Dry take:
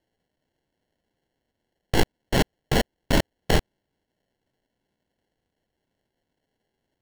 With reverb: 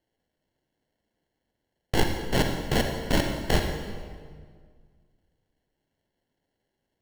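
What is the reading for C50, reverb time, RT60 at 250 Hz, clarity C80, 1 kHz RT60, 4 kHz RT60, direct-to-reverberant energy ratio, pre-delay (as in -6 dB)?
4.0 dB, 1.8 s, 2.1 s, 6.0 dB, 1.7 s, 1.4 s, 3.5 dB, 37 ms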